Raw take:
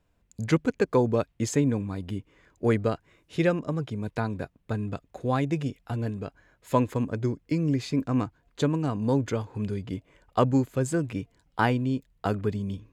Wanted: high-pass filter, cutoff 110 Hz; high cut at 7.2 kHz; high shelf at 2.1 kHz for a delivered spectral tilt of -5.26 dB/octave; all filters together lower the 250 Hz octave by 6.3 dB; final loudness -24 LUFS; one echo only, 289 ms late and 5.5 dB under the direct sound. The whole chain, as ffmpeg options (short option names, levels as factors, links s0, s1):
-af "highpass=110,lowpass=7200,equalizer=f=250:t=o:g=-8,highshelf=f=2100:g=7,aecho=1:1:289:0.531,volume=2"